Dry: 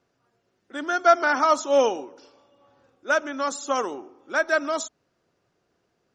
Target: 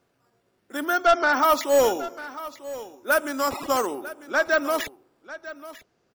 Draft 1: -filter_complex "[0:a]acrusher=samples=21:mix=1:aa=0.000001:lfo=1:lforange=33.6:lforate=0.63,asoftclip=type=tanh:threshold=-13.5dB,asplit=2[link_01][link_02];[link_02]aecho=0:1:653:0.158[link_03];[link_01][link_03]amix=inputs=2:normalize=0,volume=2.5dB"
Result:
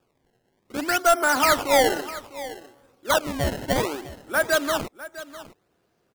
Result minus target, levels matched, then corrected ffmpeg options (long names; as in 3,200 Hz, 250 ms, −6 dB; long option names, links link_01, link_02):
sample-and-hold swept by an LFO: distortion +15 dB; echo 293 ms early
-filter_complex "[0:a]acrusher=samples=4:mix=1:aa=0.000001:lfo=1:lforange=6.4:lforate=0.63,asoftclip=type=tanh:threshold=-13.5dB,asplit=2[link_01][link_02];[link_02]aecho=0:1:946:0.158[link_03];[link_01][link_03]amix=inputs=2:normalize=0,volume=2.5dB"